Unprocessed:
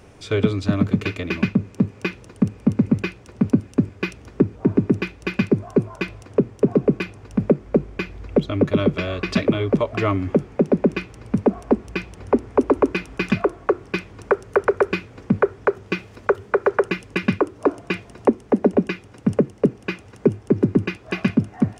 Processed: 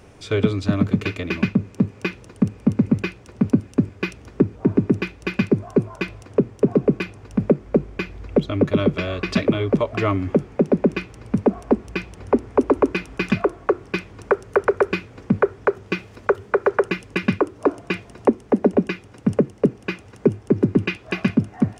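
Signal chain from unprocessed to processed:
0:20.67–0:21.13: dynamic equaliser 2,900 Hz, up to +6 dB, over −42 dBFS, Q 1.2

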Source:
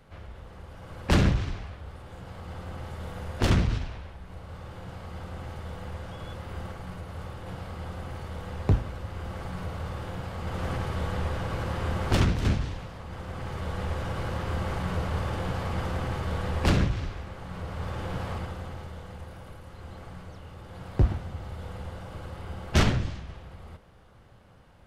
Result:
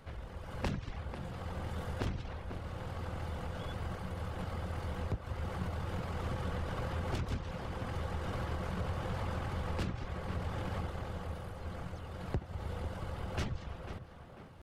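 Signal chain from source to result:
reverb reduction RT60 0.52 s
downward compressor 5 to 1, threshold −35 dBFS, peak gain reduction 16.5 dB
tempo change 1.7×
tape delay 495 ms, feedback 52%, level −7 dB, low-pass 2,000 Hz
level +1.5 dB

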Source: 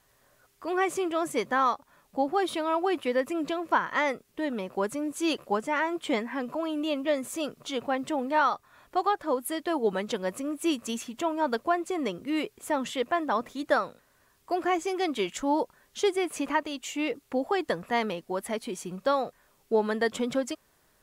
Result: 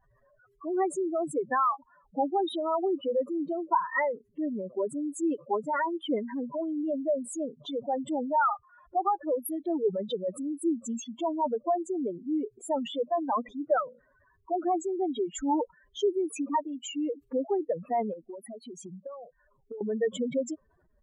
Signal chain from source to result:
expanding power law on the bin magnitudes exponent 3.9
0:18.13–0:19.81: downward compressor 8 to 1, threshold −40 dBFS, peak gain reduction 18.5 dB

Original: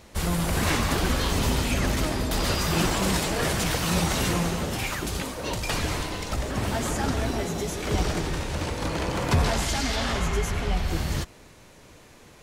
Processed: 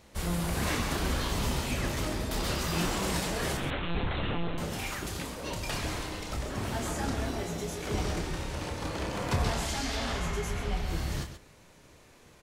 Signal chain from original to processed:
0:03.57–0:04.58: one-pitch LPC vocoder at 8 kHz 170 Hz
on a send: loudspeakers that aren't time-aligned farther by 10 metres −7 dB, 45 metres −10 dB
on the sum: level −7 dB

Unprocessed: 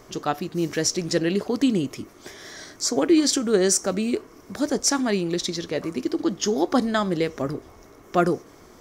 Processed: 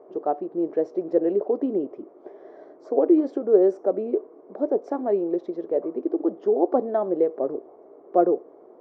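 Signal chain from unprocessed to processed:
flat-topped band-pass 510 Hz, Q 1.3
level +4.5 dB

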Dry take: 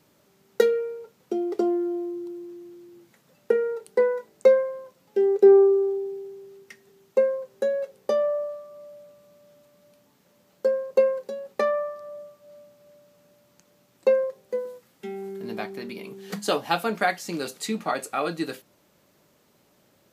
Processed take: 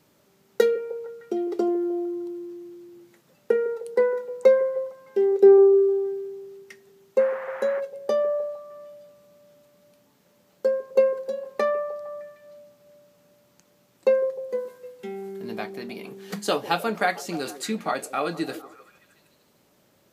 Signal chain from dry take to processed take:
echo through a band-pass that steps 153 ms, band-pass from 380 Hz, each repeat 0.7 octaves, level −12 dB
0:07.18–0:07.79: noise in a band 580–1,900 Hz −39 dBFS

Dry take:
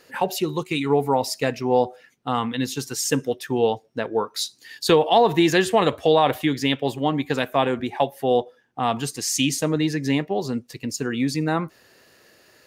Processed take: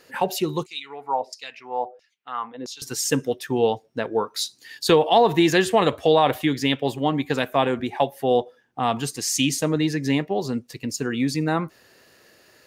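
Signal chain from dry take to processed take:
0:00.66–0:02.82: auto-filter band-pass saw down 1.5 Hz 410–6,100 Hz

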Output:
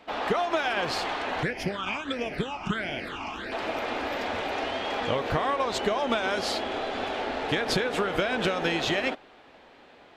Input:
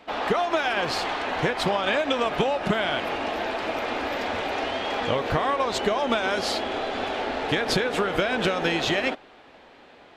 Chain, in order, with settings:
0:01.43–0:03.52: all-pass phaser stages 8, 1.5 Hz, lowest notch 500–1,200 Hz
level −2.5 dB

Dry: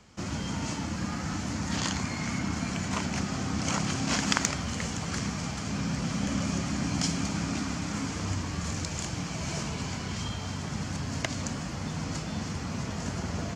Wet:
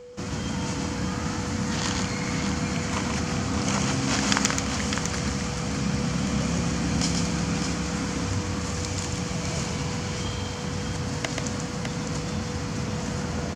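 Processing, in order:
steady tone 490 Hz −43 dBFS
multi-tap delay 134/606 ms −4/−6.5 dB
level +2 dB

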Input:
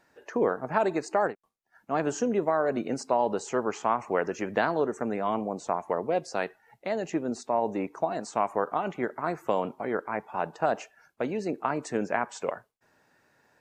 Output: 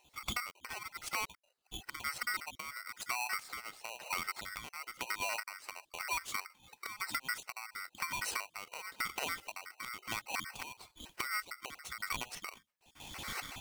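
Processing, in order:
time-frequency cells dropped at random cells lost 34%
camcorder AGC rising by 33 dB per second
gain on a spectral selection 0:01.48–0:01.83, 880–3,200 Hz +12 dB
downward compressor, threshold −33 dBFS, peak gain reduction 14.5 dB
square-wave tremolo 1 Hz, depth 65%, duty 40%
soft clipping −27.5 dBFS, distortion −15 dB
ring modulator with a square carrier 1,700 Hz
level +1 dB

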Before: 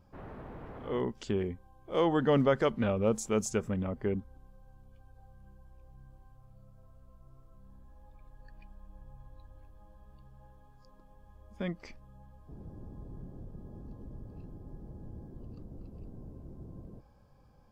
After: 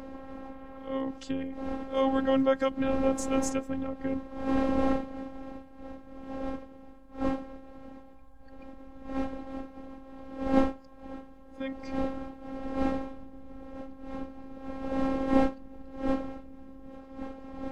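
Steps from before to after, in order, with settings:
wind on the microphone 440 Hz −34 dBFS
phases set to zero 267 Hz
level +2.5 dB

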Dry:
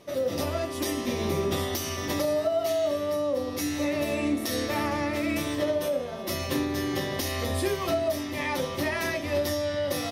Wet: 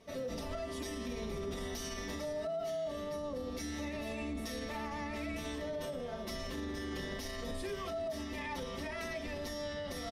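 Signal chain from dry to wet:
sub-octave generator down 2 octaves, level −2 dB
Bessel low-pass filter 9,500 Hz, order 2
comb filter 4.5 ms, depth 69%
brickwall limiter −23 dBFS, peak gain reduction 10.5 dB
level −8.5 dB

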